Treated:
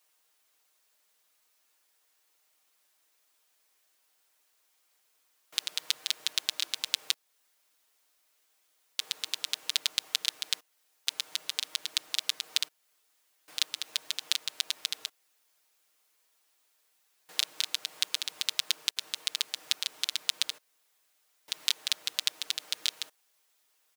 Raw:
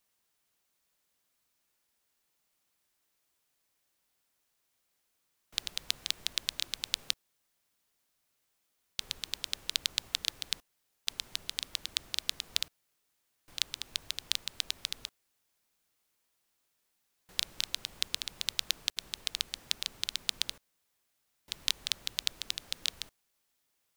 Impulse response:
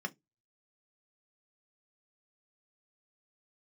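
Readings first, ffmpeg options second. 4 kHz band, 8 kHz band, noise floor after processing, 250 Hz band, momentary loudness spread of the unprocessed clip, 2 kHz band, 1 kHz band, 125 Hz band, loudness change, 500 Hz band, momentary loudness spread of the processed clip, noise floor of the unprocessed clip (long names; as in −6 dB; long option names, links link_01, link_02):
+3.0 dB, +3.5 dB, −72 dBFS, can't be measured, 6 LU, +3.0 dB, +3.0 dB, below −15 dB, +3.0 dB, +1.0 dB, 6 LU, −78 dBFS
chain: -filter_complex "[0:a]highpass=440,aecho=1:1:6.5:0.63,asplit=2[link_01][link_02];[link_02]acompressor=threshold=-39dB:ratio=6,volume=-1.5dB[link_03];[link_01][link_03]amix=inputs=2:normalize=0"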